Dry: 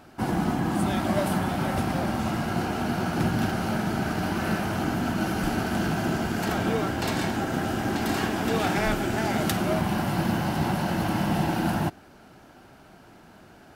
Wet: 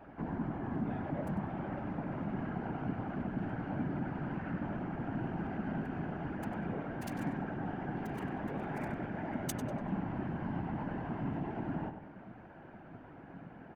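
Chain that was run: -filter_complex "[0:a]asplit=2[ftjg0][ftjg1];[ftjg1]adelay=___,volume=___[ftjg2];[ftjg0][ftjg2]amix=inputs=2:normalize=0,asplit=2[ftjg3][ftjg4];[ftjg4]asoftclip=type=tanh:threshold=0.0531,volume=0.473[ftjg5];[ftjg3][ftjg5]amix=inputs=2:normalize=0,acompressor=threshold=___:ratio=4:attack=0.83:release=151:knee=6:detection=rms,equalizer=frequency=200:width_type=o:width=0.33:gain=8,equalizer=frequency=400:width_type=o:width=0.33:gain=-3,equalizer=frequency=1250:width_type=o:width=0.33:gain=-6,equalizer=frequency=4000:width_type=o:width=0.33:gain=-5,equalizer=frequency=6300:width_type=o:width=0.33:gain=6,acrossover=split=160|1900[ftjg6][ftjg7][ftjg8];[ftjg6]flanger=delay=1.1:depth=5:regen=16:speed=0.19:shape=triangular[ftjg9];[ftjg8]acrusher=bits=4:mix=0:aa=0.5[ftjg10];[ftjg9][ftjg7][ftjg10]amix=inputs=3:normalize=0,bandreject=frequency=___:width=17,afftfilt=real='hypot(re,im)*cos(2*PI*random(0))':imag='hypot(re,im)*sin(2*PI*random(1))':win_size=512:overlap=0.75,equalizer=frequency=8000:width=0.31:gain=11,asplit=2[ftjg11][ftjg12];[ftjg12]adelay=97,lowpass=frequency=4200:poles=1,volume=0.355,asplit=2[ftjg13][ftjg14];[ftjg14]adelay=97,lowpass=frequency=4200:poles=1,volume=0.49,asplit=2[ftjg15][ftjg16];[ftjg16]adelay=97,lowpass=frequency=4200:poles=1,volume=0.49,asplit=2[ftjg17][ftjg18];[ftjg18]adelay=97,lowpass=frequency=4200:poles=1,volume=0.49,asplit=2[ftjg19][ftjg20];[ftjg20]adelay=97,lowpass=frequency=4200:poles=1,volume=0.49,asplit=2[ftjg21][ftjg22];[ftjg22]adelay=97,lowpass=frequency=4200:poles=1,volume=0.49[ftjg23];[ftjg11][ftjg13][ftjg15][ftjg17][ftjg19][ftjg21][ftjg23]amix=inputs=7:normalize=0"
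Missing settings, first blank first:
15, 0.447, 0.0282, 5400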